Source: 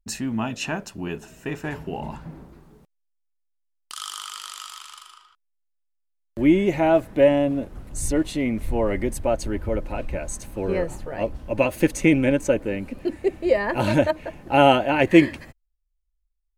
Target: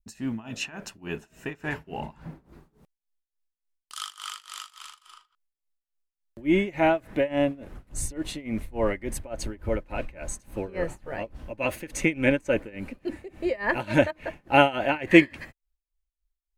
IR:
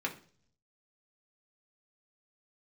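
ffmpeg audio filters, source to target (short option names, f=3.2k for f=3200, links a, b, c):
-af "tremolo=f=3.5:d=0.92,adynamicequalizer=threshold=0.00794:dfrequency=2000:dqfactor=0.93:tfrequency=2000:tqfactor=0.93:attack=5:release=100:ratio=0.375:range=3.5:mode=boostabove:tftype=bell,volume=-1.5dB"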